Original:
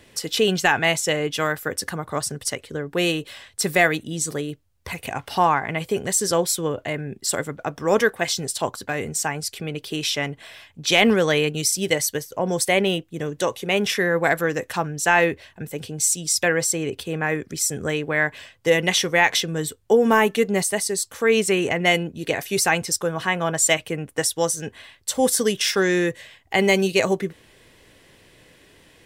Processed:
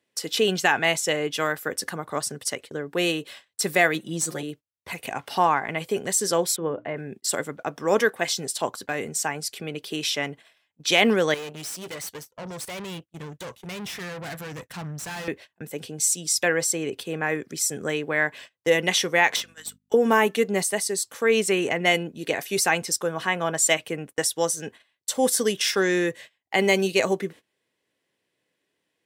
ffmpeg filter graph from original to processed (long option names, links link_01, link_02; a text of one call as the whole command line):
ffmpeg -i in.wav -filter_complex "[0:a]asettb=1/sr,asplit=3[link_01][link_02][link_03];[link_01]atrim=end=3.944[link_04];[link_02]atrim=start=3.94:end=4.43,asetpts=PTS-STARTPTS,afade=type=in:duration=0.004:curve=qsin,afade=type=out:start_time=0.486:duration=0.004:curve=qsin,aeval=exprs='if(lt(val(0),0),0.708*val(0),val(0))':channel_layout=same,aecho=1:1:5.7:0.77,atrim=end_sample=21609[link_05];[link_03]atrim=start=4.426[link_06];[link_04][link_05]acrossfade=duration=0.004:curve1=hsin:curve2=qsin[link_07];[link_07][link_06]acrossfade=duration=0.004:curve1=qsin:curve2=hsin,asettb=1/sr,asplit=3[link_08][link_09][link_10];[link_08]atrim=end=6.564[link_11];[link_09]atrim=start=6.56:end=6.97,asetpts=PTS-STARTPTS,afade=type=in:duration=0.004:curve=qsin,afade=type=out:start_time=0.406:duration=0.004:curve=qsin,lowpass=1700,bandreject=frequency=60:width_type=h:width=6,bandreject=frequency=120:width_type=h:width=6,bandreject=frequency=180:width_type=h:width=6,bandreject=frequency=240:width_type=h:width=6,bandreject=frequency=300:width_type=h:width=6,bandreject=frequency=360:width_type=h:width=6[link_12];[link_10]atrim=start=6.966[link_13];[link_11][link_12]acrossfade=duration=0.004:curve1=hsin:curve2=qsin[link_14];[link_14][link_13]acrossfade=duration=0.004:curve1=qsin:curve2=hsin,asettb=1/sr,asplit=3[link_15][link_16][link_17];[link_15]atrim=end=11.344[link_18];[link_16]atrim=start=11.34:end=15.28,asetpts=PTS-STARTPTS,afade=type=in:duration=0.004:curve=qsin,afade=type=out:start_time=3.936:duration=0.004:curve=qsin,aeval=exprs='(tanh(31.6*val(0)+0.8)-tanh(0.8))/31.6':channel_layout=same,asubboost=boost=9:cutoff=130[link_19];[link_17]atrim=start=15.276[link_20];[link_18][link_19]acrossfade=duration=0.004:curve1=hsin:curve2=qsin[link_21];[link_21][link_20]acrossfade=duration=0.004:curve1=qsin:curve2=hsin,asettb=1/sr,asplit=3[link_22][link_23][link_24];[link_22]atrim=end=19.364[link_25];[link_23]atrim=start=19.36:end=19.94,asetpts=PTS-STARTPTS,afade=type=in:duration=0.004:curve=qsin,afade=type=out:start_time=0.576:duration=0.004:curve=qsin,highpass=1500,aeval=exprs='val(0)+0.00891*(sin(2*PI*50*n/s)+sin(2*PI*2*50*n/s)/2+sin(2*PI*3*50*n/s)/3+sin(2*PI*4*50*n/s)/4+sin(2*PI*5*50*n/s)/5)':channel_layout=same,aeval=exprs='(tanh(10*val(0)+0.5)-tanh(0.5))/10':channel_layout=same[link_26];[link_24]atrim=start=19.936[link_27];[link_25][link_26]acrossfade=duration=0.004:curve1=hsin:curve2=qsin[link_28];[link_28][link_27]acrossfade=duration=0.004:curve1=qsin:curve2=hsin,highpass=180,agate=range=-22dB:threshold=-39dB:ratio=16:detection=peak,volume=-2dB" out.wav